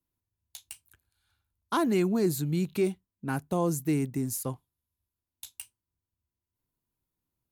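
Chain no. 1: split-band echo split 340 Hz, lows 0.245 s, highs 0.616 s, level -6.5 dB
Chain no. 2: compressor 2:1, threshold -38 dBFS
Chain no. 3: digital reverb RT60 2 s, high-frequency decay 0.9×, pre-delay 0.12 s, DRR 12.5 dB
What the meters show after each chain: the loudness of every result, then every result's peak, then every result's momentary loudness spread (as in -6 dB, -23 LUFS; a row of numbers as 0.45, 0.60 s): -29.0, -37.5, -29.0 LUFS; -14.5, -22.5, -16.5 dBFS; 22, 14, 20 LU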